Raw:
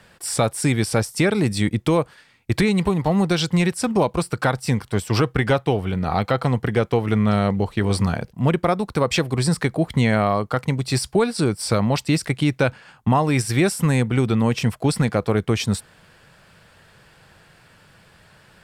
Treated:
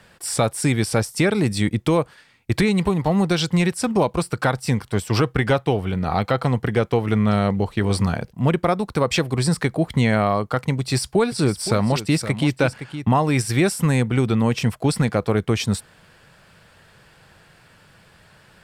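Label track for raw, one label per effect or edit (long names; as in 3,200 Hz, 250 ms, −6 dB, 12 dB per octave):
10.800000	13.110000	single-tap delay 516 ms −11.5 dB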